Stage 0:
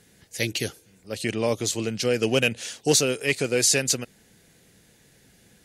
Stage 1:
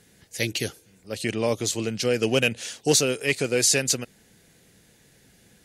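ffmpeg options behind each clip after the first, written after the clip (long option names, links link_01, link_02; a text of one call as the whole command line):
ffmpeg -i in.wav -af anull out.wav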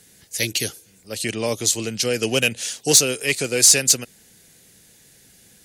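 ffmpeg -i in.wav -filter_complex "[0:a]highshelf=frequency=3800:gain=11,acrossover=split=330[link_01][link_02];[link_02]volume=4.5dB,asoftclip=hard,volume=-4.5dB[link_03];[link_01][link_03]amix=inputs=2:normalize=0" out.wav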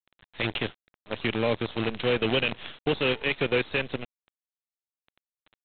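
ffmpeg -i in.wav -af "alimiter=limit=-13dB:level=0:latency=1:release=14,aresample=8000,acrusher=bits=5:dc=4:mix=0:aa=0.000001,aresample=44100,volume=-1.5dB" out.wav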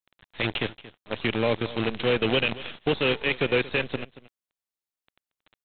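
ffmpeg -i in.wav -af "aecho=1:1:229:0.133,volume=1.5dB" out.wav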